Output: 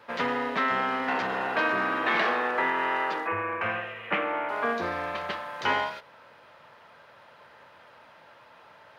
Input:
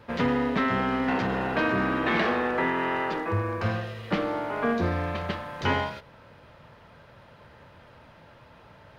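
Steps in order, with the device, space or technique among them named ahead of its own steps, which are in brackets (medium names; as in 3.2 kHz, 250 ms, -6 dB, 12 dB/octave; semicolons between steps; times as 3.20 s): 3.27–4.49 s: resonant high shelf 3.4 kHz -10.5 dB, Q 3; filter by subtraction (in parallel: low-pass 1 kHz 12 dB/octave + polarity flip)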